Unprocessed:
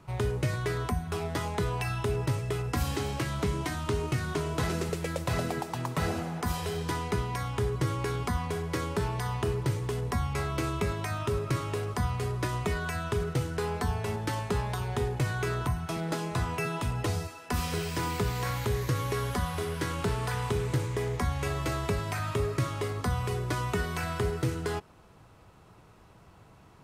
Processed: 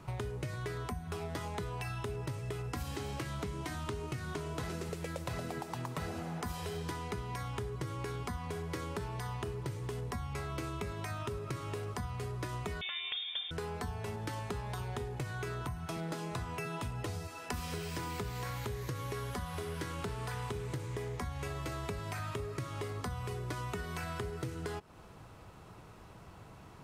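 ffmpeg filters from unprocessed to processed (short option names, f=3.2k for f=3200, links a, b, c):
-filter_complex "[0:a]asettb=1/sr,asplit=3[a][b][c];[a]atrim=end=12.814[d];[b]atrim=start=12.81:end=13.51,asetpts=PTS-STARTPTS,afade=t=in:d=0.004:c=qsin,afade=t=out:st=0.696:d=0.004:c=qsin,lowpass=f=3.1k:t=q:w=0.5098,lowpass=f=3.1k:t=q:w=0.6013,lowpass=f=3.1k:t=q:w=0.9,lowpass=f=3.1k:t=q:w=2.563,afreqshift=-3700[e];[c]atrim=start=13.506[f];[d][e]acrossfade=d=0.004:c1=hsin:c2=qsin[g];[g][f]acrossfade=d=0.004:c1=qsin:c2=hsin,acompressor=threshold=-39dB:ratio=6,volume=2.5dB"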